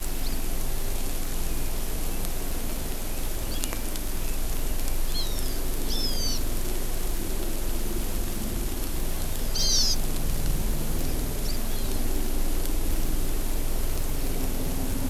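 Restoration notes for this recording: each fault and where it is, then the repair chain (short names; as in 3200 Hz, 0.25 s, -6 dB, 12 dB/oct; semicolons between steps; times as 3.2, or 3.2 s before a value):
crackle 42/s -28 dBFS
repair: de-click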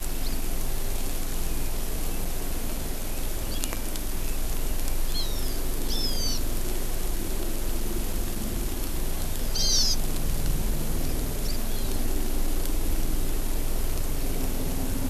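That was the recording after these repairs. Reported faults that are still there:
none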